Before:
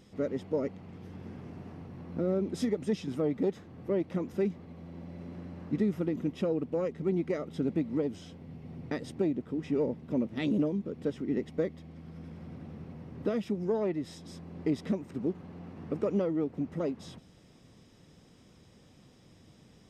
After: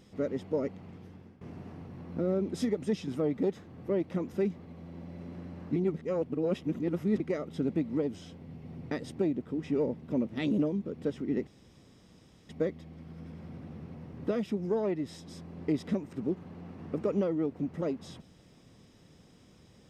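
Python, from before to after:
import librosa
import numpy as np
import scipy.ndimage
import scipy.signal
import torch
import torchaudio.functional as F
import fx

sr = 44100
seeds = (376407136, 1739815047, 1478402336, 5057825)

y = fx.edit(x, sr, fx.fade_out_to(start_s=0.87, length_s=0.54, floor_db=-18.0),
    fx.reverse_span(start_s=5.76, length_s=1.44),
    fx.insert_room_tone(at_s=11.47, length_s=1.02), tone=tone)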